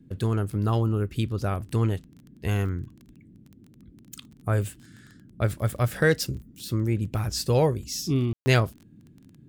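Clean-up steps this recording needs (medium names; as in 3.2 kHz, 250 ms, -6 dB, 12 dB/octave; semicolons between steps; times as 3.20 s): de-click; room tone fill 8.33–8.46 s; noise print and reduce 17 dB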